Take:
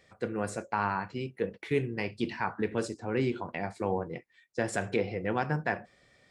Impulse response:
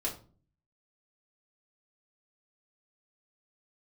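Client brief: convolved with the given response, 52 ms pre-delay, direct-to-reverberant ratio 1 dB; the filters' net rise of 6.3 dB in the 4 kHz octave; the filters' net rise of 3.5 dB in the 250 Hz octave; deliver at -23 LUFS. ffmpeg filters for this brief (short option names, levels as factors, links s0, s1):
-filter_complex "[0:a]equalizer=f=250:t=o:g=4.5,equalizer=f=4000:t=o:g=8.5,asplit=2[s0][s1];[1:a]atrim=start_sample=2205,adelay=52[s2];[s1][s2]afir=irnorm=-1:irlink=0,volume=0.596[s3];[s0][s3]amix=inputs=2:normalize=0,volume=1.68"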